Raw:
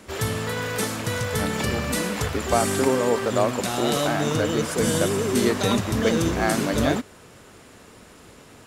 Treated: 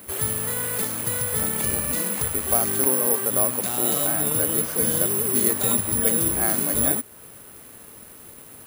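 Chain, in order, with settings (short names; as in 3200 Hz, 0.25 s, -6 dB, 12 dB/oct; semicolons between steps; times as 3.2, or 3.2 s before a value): in parallel at -1 dB: compressor, threshold -33 dBFS, peak gain reduction 17 dB; on the sum: careless resampling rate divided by 4×, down filtered, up zero stuff; gain -7.5 dB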